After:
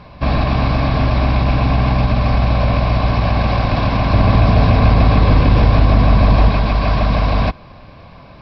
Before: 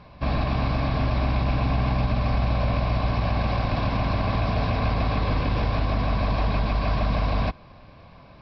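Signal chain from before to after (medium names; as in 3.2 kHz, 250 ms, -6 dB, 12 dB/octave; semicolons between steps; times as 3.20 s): 4.13–6.49 s: bass shelf 440 Hz +5 dB; trim +8.5 dB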